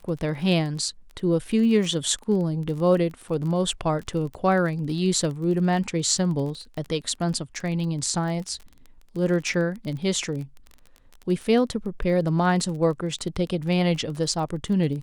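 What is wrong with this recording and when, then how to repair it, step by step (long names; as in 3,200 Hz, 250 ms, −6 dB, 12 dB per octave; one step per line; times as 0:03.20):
surface crackle 25 per second −32 dBFS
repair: click removal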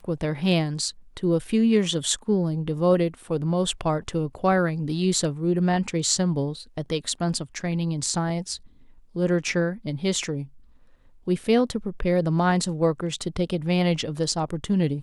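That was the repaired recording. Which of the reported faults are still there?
none of them is left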